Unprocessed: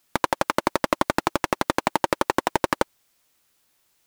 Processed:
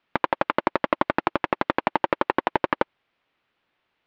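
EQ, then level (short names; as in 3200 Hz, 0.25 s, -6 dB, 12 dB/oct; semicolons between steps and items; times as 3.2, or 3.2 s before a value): LPF 3100 Hz 24 dB/oct; low shelf 110 Hz -7 dB; 0.0 dB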